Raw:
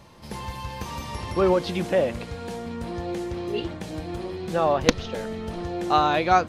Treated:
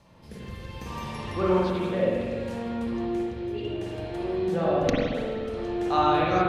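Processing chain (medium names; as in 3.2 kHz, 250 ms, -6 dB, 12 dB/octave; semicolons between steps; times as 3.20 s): rotary cabinet horn 0.65 Hz; spring tank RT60 1.8 s, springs 43/54 ms, chirp 55 ms, DRR -6 dB; trim -6 dB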